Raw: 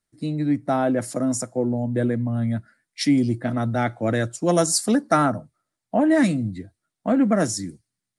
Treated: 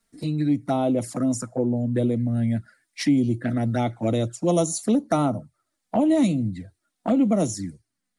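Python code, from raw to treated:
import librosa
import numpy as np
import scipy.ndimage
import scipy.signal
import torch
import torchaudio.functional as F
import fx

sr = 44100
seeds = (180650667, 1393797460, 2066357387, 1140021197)

y = fx.env_flanger(x, sr, rest_ms=4.4, full_db=-18.5)
y = fx.band_squash(y, sr, depth_pct=40)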